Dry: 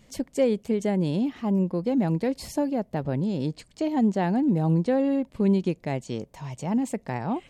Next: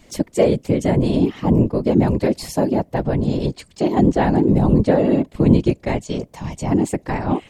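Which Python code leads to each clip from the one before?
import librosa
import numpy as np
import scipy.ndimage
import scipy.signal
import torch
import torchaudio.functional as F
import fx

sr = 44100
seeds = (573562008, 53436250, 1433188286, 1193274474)

y = fx.whisperise(x, sr, seeds[0])
y = F.gain(torch.from_numpy(y), 7.5).numpy()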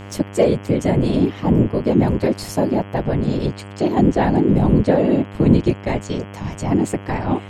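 y = fx.dmg_buzz(x, sr, base_hz=100.0, harmonics=33, level_db=-35.0, tilt_db=-5, odd_only=False)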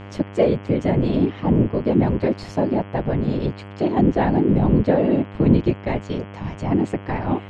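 y = scipy.signal.sosfilt(scipy.signal.butter(2, 3600.0, 'lowpass', fs=sr, output='sos'), x)
y = F.gain(torch.from_numpy(y), -2.0).numpy()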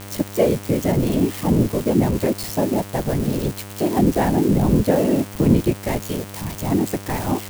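y = x + 0.5 * 10.0 ** (-20.0 / 20.0) * np.diff(np.sign(x), prepend=np.sign(x[:1]))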